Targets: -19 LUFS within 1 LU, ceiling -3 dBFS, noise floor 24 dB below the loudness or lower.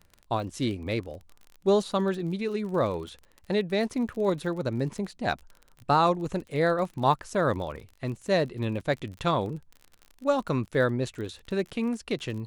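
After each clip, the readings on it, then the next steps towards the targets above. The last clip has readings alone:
ticks 37/s; loudness -28.5 LUFS; peak -9.5 dBFS; loudness target -19.0 LUFS
-> de-click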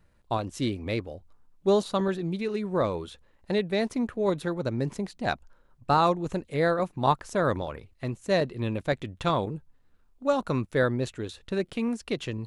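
ticks 0/s; loudness -28.5 LUFS; peak -9.5 dBFS; loudness target -19.0 LUFS
-> gain +9.5 dB; limiter -3 dBFS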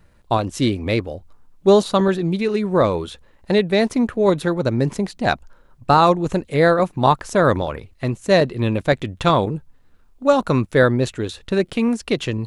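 loudness -19.0 LUFS; peak -3.0 dBFS; noise floor -53 dBFS

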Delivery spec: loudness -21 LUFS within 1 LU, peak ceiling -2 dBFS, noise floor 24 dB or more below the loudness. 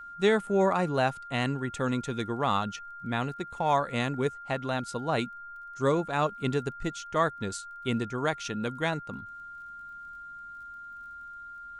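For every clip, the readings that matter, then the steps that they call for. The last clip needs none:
ticks 26/s; steady tone 1400 Hz; tone level -41 dBFS; loudness -29.5 LUFS; peak -12.0 dBFS; loudness target -21.0 LUFS
-> de-click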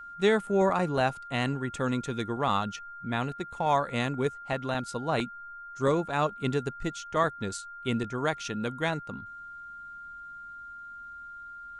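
ticks 0.085/s; steady tone 1400 Hz; tone level -41 dBFS
-> notch 1400 Hz, Q 30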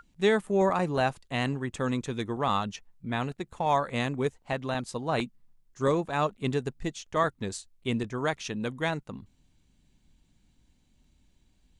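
steady tone none; loudness -30.0 LUFS; peak -12.0 dBFS; loudness target -21.0 LUFS
-> gain +9 dB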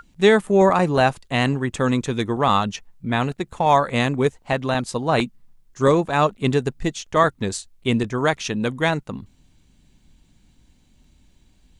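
loudness -21.0 LUFS; peak -3.0 dBFS; noise floor -58 dBFS

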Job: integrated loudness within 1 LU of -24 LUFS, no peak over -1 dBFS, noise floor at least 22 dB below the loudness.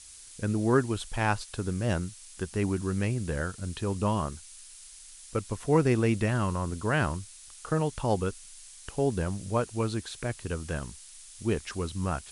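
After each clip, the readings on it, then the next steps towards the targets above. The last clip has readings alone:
noise floor -49 dBFS; noise floor target -52 dBFS; loudness -30.0 LUFS; peak -10.0 dBFS; loudness target -24.0 LUFS
-> noise print and reduce 6 dB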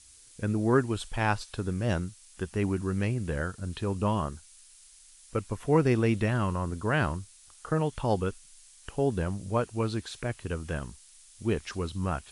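noise floor -55 dBFS; loudness -30.0 LUFS; peak -10.5 dBFS; loudness target -24.0 LUFS
-> gain +6 dB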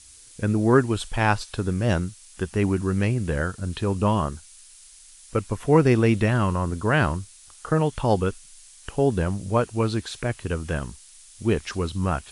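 loudness -24.0 LUFS; peak -4.5 dBFS; noise floor -49 dBFS

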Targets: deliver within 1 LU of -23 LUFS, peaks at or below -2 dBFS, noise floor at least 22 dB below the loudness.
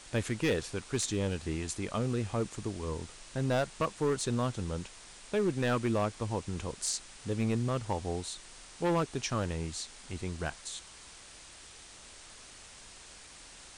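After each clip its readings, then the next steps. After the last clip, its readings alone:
clipped 1.4%; flat tops at -23.5 dBFS; noise floor -52 dBFS; noise floor target -56 dBFS; loudness -34.0 LUFS; peak -23.5 dBFS; loudness target -23.0 LUFS
-> clip repair -23.5 dBFS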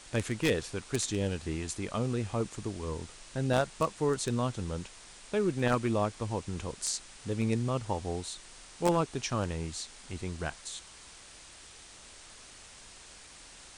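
clipped 0.0%; noise floor -52 dBFS; noise floor target -55 dBFS
-> denoiser 6 dB, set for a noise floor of -52 dBFS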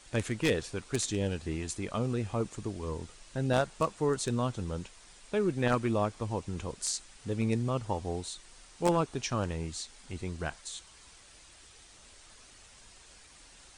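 noise floor -56 dBFS; loudness -33.0 LUFS; peak -14.5 dBFS; loudness target -23.0 LUFS
-> gain +10 dB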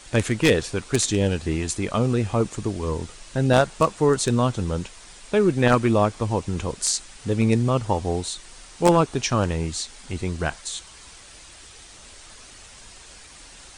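loudness -23.0 LUFS; peak -4.5 dBFS; noise floor -46 dBFS

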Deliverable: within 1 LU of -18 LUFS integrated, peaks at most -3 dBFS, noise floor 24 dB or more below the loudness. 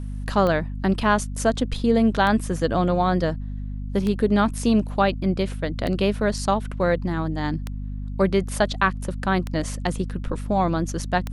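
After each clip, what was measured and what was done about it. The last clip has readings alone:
clicks 7; hum 50 Hz; harmonics up to 250 Hz; hum level -28 dBFS; loudness -23.0 LUFS; peak -5.0 dBFS; loudness target -18.0 LUFS
-> de-click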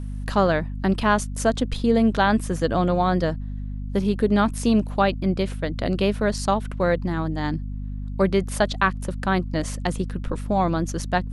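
clicks 0; hum 50 Hz; harmonics up to 250 Hz; hum level -28 dBFS
-> notches 50/100/150/200/250 Hz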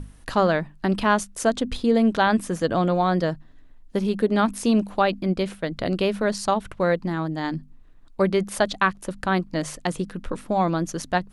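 hum none; loudness -23.5 LUFS; peak -5.5 dBFS; loudness target -18.0 LUFS
-> gain +5.5 dB; limiter -3 dBFS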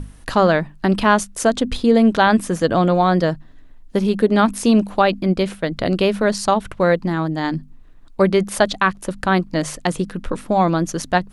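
loudness -18.5 LUFS; peak -3.0 dBFS; noise floor -43 dBFS

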